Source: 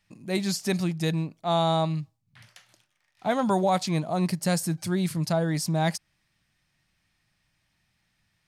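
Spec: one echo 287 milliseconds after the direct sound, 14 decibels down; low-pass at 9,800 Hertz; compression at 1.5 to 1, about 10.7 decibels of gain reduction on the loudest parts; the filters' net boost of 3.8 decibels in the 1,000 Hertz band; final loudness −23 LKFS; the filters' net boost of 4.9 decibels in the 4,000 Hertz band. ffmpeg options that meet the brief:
ffmpeg -i in.wav -af "lowpass=9800,equalizer=frequency=1000:width_type=o:gain=5,equalizer=frequency=4000:width_type=o:gain=5.5,acompressor=threshold=-48dB:ratio=1.5,aecho=1:1:287:0.2,volume=11.5dB" out.wav

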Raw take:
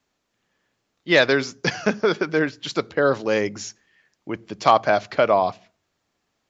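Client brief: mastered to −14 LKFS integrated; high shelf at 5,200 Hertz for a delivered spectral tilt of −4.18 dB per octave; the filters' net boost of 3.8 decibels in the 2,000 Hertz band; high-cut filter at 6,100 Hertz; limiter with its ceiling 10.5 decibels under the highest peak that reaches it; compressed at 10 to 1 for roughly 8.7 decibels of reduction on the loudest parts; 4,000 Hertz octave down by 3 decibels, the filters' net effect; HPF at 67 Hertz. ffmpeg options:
ffmpeg -i in.wav -af "highpass=67,lowpass=6100,equalizer=frequency=2000:width_type=o:gain=5.5,equalizer=frequency=4000:width_type=o:gain=-8.5,highshelf=frequency=5200:gain=8.5,acompressor=threshold=-17dB:ratio=10,volume=15dB,alimiter=limit=-1dB:level=0:latency=1" out.wav

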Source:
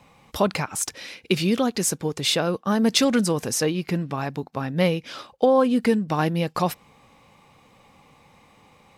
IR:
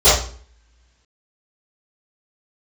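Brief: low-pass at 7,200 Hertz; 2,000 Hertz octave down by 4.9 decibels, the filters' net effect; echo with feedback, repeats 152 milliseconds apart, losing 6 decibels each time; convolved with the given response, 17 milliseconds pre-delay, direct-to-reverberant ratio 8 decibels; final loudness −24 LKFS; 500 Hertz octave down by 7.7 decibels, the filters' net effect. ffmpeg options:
-filter_complex "[0:a]lowpass=7200,equalizer=frequency=500:width_type=o:gain=-8.5,equalizer=frequency=2000:width_type=o:gain=-6,aecho=1:1:152|304|456|608|760|912:0.501|0.251|0.125|0.0626|0.0313|0.0157,asplit=2[link_01][link_02];[1:a]atrim=start_sample=2205,adelay=17[link_03];[link_02][link_03]afir=irnorm=-1:irlink=0,volume=-34.5dB[link_04];[link_01][link_04]amix=inputs=2:normalize=0,volume=0.5dB"

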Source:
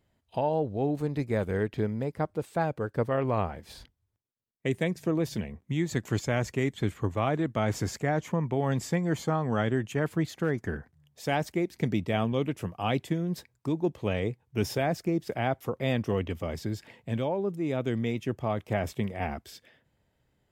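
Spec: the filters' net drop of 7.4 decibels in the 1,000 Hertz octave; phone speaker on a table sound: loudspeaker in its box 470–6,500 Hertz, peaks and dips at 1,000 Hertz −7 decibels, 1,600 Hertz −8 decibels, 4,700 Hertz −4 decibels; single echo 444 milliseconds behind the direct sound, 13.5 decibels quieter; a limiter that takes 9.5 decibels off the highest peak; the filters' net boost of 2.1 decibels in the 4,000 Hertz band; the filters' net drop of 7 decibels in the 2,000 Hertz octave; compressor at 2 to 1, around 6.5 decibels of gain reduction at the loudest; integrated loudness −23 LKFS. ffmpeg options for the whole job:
ffmpeg -i in.wav -af "equalizer=frequency=1000:width_type=o:gain=-7.5,equalizer=frequency=2000:width_type=o:gain=-4,equalizer=frequency=4000:width_type=o:gain=6.5,acompressor=threshold=-35dB:ratio=2,alimiter=level_in=5.5dB:limit=-24dB:level=0:latency=1,volume=-5.5dB,highpass=frequency=470:width=0.5412,highpass=frequency=470:width=1.3066,equalizer=frequency=1000:width_type=q:width=4:gain=-7,equalizer=frequency=1600:width_type=q:width=4:gain=-8,equalizer=frequency=4700:width_type=q:width=4:gain=-4,lowpass=frequency=6500:width=0.5412,lowpass=frequency=6500:width=1.3066,aecho=1:1:444:0.211,volume=24dB" out.wav

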